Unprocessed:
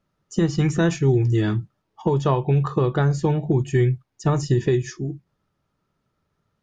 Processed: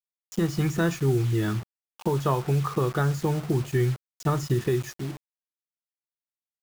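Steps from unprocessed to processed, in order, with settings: bit-crush 6-bit; dynamic EQ 1300 Hz, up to +6 dB, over -43 dBFS, Q 2.9; gain -5 dB

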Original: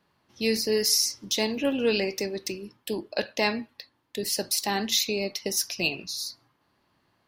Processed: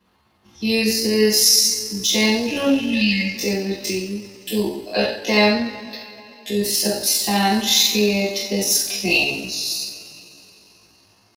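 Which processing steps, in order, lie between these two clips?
spectral gain 1.75–2.15, 250–1700 Hz -29 dB; two-slope reverb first 0.38 s, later 2.3 s, from -20 dB, DRR -9.5 dB; tempo 0.64×; gain -1 dB

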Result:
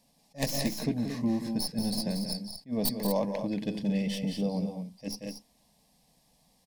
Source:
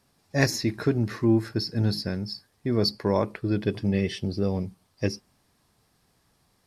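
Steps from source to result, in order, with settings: tracing distortion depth 0.15 ms; compressor 1.5:1, threshold -30 dBFS, peak gain reduction 5.5 dB; fixed phaser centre 370 Hz, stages 6; on a send: loudspeakers at several distances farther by 62 m -9 dB, 79 m -9 dB; on the sum: attack slew limiter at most 340 dB/s; gain +2 dB

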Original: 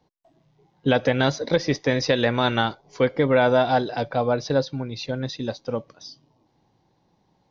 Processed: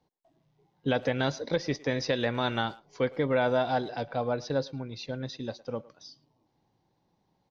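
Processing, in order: speakerphone echo 0.11 s, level -20 dB; gain -7.5 dB

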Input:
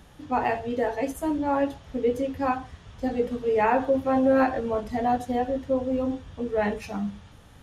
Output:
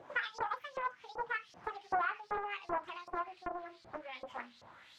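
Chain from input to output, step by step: speed glide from 196% -> 110%; compressor 8:1, threshold -35 dBFS, peak gain reduction 17.5 dB; LFO band-pass saw up 2.6 Hz 590–5500 Hz; Doppler distortion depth 0.54 ms; gain +6.5 dB

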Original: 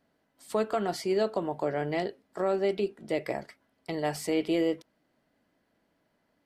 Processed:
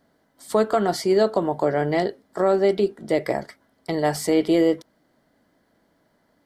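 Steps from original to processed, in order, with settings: bell 2600 Hz -11 dB 0.3 oct; gain +8.5 dB

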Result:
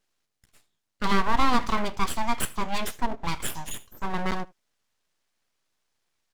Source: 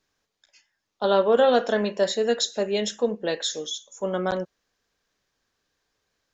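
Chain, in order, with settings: full-wave rectifier; echo 76 ms -23.5 dB

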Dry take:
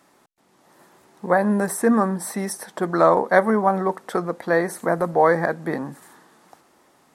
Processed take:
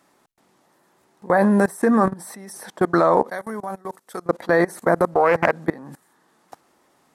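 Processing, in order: level quantiser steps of 23 dB; 3.3–4.26 pre-emphasis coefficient 0.8; 5.1–5.62 Doppler distortion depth 0.27 ms; gain +7.5 dB

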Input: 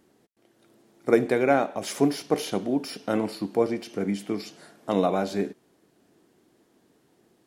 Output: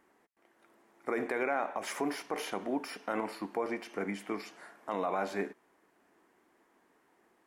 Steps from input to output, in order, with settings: graphic EQ 125/1000/2000/4000 Hz -12/+10/+9/-5 dB; limiter -14.5 dBFS, peak gain reduction 11.5 dB; gain -7.5 dB

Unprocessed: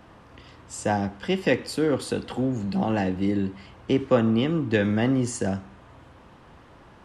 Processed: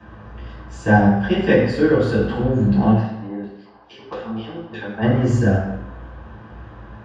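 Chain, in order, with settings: bell 1600 Hz +7 dB 0.33 oct; 2.9–5.01 LFO band-pass square 1.4 Hz -> 7.8 Hz 830–4700 Hz; tape spacing loss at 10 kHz 21 dB; reverb RT60 0.95 s, pre-delay 3 ms, DRR -8.5 dB; gain -7 dB

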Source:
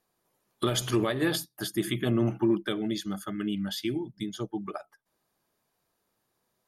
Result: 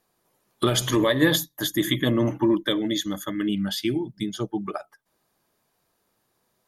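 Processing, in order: 0.87–3.49 ripple EQ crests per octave 1.1, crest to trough 11 dB; gain +5.5 dB

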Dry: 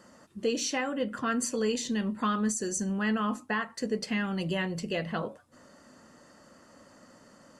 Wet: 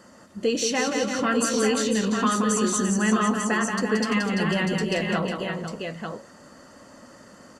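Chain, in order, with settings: tapped delay 0.177/0.34/0.498/0.894 s -5.5/-8.5/-9.5/-6 dB; gain +5 dB

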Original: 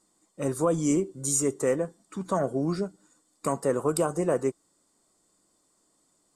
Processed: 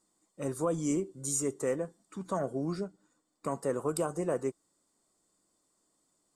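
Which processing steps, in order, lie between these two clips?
2.83–3.51 high shelf 7100 Hz -> 4400 Hz -10.5 dB; gain -6 dB

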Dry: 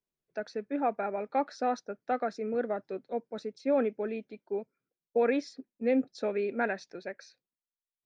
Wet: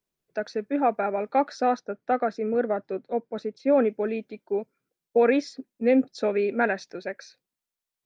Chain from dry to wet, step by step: 1.75–3.88 high shelf 5000 Hz -12 dB; gain +6.5 dB

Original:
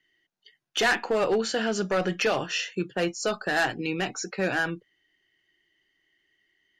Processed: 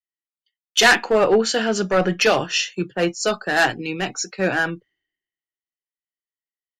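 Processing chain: three-band expander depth 100%; gain +6.5 dB

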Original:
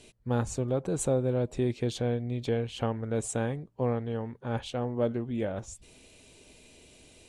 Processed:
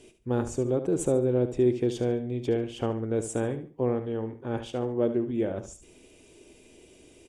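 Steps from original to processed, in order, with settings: bell 350 Hz +10.5 dB 0.71 oct; notch 4100 Hz, Q 5.8; feedback echo 72 ms, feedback 27%, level -11 dB; gain -2 dB

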